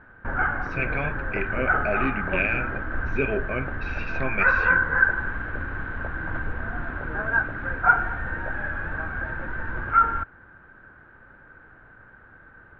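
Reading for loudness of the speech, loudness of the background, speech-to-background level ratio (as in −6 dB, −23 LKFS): −29.5 LKFS, −25.5 LKFS, −4.0 dB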